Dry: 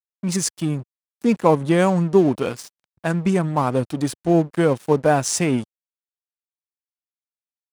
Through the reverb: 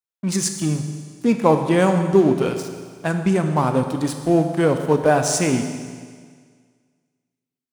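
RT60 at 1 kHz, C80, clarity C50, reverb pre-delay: 1.8 s, 8.5 dB, 7.5 dB, 12 ms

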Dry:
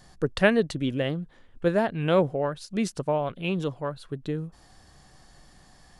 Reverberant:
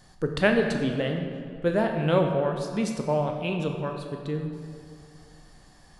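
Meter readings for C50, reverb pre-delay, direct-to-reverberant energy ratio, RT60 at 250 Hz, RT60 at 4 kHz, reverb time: 4.5 dB, 13 ms, 3.0 dB, 2.4 s, 1.4 s, 2.2 s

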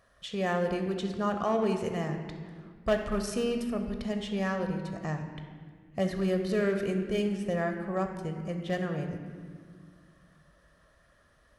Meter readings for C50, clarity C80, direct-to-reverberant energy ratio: 6.5 dB, 8.0 dB, 5.0 dB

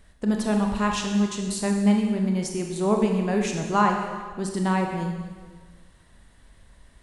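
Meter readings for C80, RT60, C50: 5.5 dB, 1.5 s, 4.0 dB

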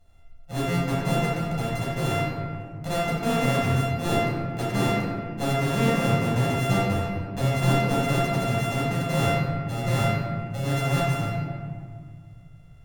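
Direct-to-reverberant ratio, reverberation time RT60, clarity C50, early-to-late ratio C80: -7.5 dB, 1.9 s, -1.5 dB, 0.5 dB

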